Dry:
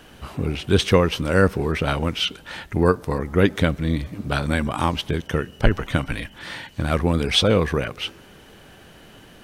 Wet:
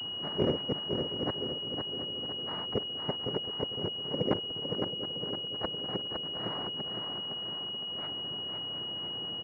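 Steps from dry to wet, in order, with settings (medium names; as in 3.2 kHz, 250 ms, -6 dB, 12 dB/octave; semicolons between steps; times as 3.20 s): in parallel at -2 dB: compression 5:1, threshold -32 dBFS, peak gain reduction 19 dB; on the sum: frequency shift -42 Hz; inverted gate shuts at -12 dBFS, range -37 dB; noise-vocoded speech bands 3; feedback delay 510 ms, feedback 53%, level -5 dB; formant shift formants +4 st; distance through air 460 m; shuffle delay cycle 961 ms, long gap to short 3:1, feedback 45%, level -12.5 dB; class-D stage that switches slowly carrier 2.9 kHz; trim -2 dB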